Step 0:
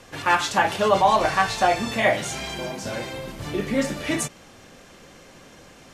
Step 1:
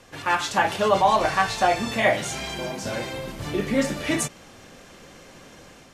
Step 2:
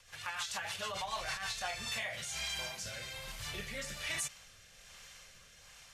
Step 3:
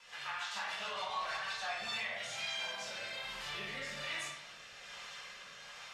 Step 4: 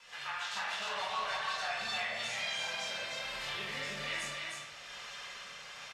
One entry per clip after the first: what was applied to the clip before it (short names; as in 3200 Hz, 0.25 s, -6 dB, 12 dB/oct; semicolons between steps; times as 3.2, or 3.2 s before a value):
AGC gain up to 4.5 dB; gain -3.5 dB
passive tone stack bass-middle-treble 10-0-10; limiter -26.5 dBFS, peak gain reduction 12 dB; rotary speaker horn 6.7 Hz, later 1.2 Hz, at 1.26
band-pass 1400 Hz, Q 0.52; compressor 2:1, threshold -55 dBFS, peak gain reduction 11 dB; reverb RT60 1.0 s, pre-delay 3 ms, DRR -8.5 dB; gain +2 dB
echo 0.308 s -3.5 dB; gain +1.5 dB